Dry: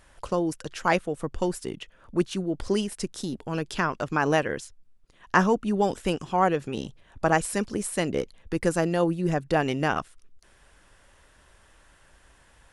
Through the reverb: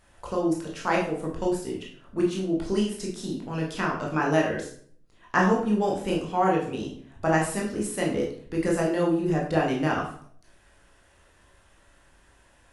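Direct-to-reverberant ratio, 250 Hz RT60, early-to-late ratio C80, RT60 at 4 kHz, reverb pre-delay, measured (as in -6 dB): -3.0 dB, 0.65 s, 9.5 dB, 0.45 s, 15 ms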